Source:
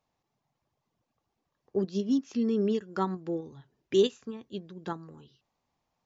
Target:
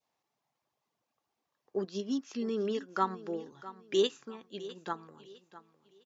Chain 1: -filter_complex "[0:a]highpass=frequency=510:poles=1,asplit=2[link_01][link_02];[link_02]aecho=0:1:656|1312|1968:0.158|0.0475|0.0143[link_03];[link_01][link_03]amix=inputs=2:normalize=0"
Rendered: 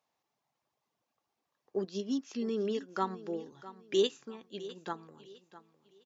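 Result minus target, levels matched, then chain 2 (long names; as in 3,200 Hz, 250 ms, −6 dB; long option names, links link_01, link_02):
1,000 Hz band −2.5 dB
-filter_complex "[0:a]highpass=frequency=510:poles=1,adynamicequalizer=threshold=0.00447:dfrequency=1300:dqfactor=1.3:tfrequency=1300:tqfactor=1.3:attack=5:release=100:ratio=0.417:range=2.5:mode=boostabove:tftype=bell,asplit=2[link_01][link_02];[link_02]aecho=0:1:656|1312|1968:0.158|0.0475|0.0143[link_03];[link_01][link_03]amix=inputs=2:normalize=0"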